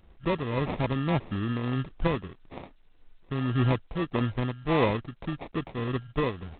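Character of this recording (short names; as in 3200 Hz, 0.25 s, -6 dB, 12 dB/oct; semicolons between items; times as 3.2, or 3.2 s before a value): tremolo triangle 1.7 Hz, depth 65%; aliases and images of a low sample rate 1500 Hz, jitter 0%; G.726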